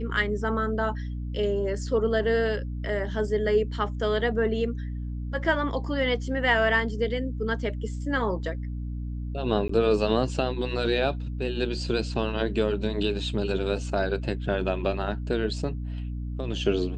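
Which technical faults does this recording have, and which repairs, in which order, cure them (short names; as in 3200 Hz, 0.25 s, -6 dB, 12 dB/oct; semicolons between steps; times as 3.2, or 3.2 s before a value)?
hum 60 Hz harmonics 5 -32 dBFS
9.68–9.69 gap 14 ms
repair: de-hum 60 Hz, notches 5; interpolate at 9.68, 14 ms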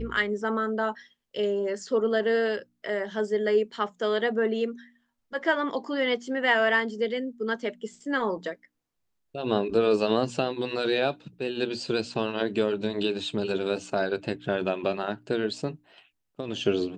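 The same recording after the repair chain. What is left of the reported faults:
none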